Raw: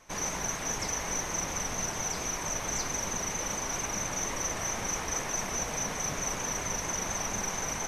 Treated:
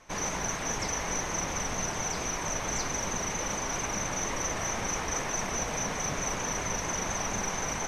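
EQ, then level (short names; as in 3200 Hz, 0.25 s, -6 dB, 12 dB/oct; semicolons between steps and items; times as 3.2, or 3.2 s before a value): high shelf 9300 Hz -12 dB; +2.5 dB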